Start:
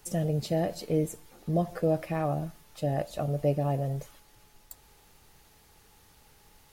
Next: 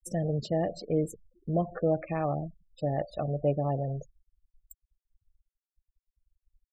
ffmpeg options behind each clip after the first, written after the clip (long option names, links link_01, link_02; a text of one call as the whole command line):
ffmpeg -i in.wav -af "afftfilt=real='re*gte(hypot(re,im),0.0126)':imag='im*gte(hypot(re,im),0.0126)':win_size=1024:overlap=0.75,bass=frequency=250:gain=-2,treble=frequency=4000:gain=-3" out.wav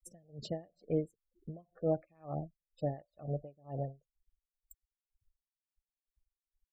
ffmpeg -i in.wav -af "aeval=exprs='val(0)*pow(10,-33*(0.5-0.5*cos(2*PI*2.1*n/s))/20)':channel_layout=same,volume=-3.5dB" out.wav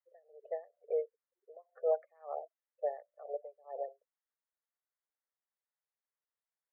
ffmpeg -i in.wav -af "asuperpass=centerf=960:order=20:qfactor=0.57,volume=2.5dB" out.wav